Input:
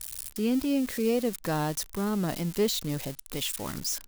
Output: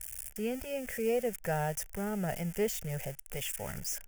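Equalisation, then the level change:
high-shelf EQ 9,700 Hz −4 dB
phaser with its sweep stopped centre 1,100 Hz, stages 6
0.0 dB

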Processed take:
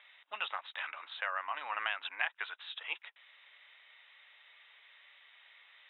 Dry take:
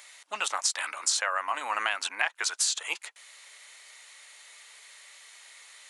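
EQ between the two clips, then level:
Chebyshev low-pass filter 3,800 Hz, order 10
low-shelf EQ 230 Hz −8 dB
low-shelf EQ 490 Hz −8 dB
−5.0 dB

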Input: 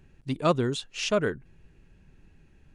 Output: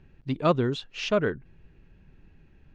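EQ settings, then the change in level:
high-frequency loss of the air 230 metres
high-shelf EQ 5,500 Hz +9 dB
+1.5 dB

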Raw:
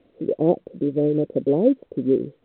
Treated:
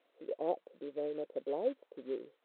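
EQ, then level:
Chebyshev high-pass filter 860 Hz, order 2
−5.5 dB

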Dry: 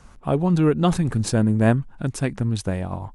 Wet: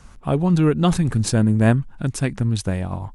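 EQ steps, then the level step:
parametric band 580 Hz −4 dB 2.7 octaves
+3.5 dB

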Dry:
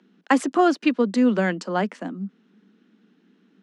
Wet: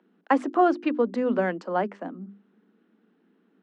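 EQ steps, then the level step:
resonant band-pass 630 Hz, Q 0.65
mains-hum notches 50/100/150/200/250/300/350/400 Hz
0.0 dB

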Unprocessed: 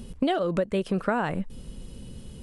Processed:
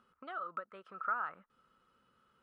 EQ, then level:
resonant band-pass 1,300 Hz, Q 16
+6.0 dB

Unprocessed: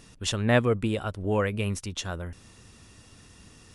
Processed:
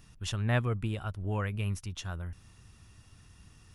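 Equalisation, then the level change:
graphic EQ with 10 bands 250 Hz −8 dB, 500 Hz −11 dB, 1,000 Hz −3 dB, 2,000 Hz −5 dB, 4,000 Hz −6 dB, 8,000 Hz −9 dB
0.0 dB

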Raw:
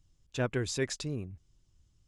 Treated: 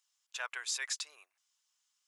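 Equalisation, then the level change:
inverse Chebyshev high-pass filter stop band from 210 Hz, stop band 70 dB
high-shelf EQ 7,000 Hz +5 dB
0.0 dB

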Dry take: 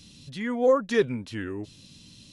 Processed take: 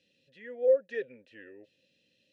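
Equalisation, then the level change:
formant filter e
−2.0 dB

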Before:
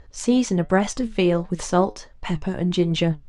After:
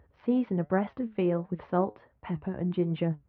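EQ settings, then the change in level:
Gaussian smoothing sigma 3.9 samples
high-pass filter 65 Hz 24 dB per octave
−7.5 dB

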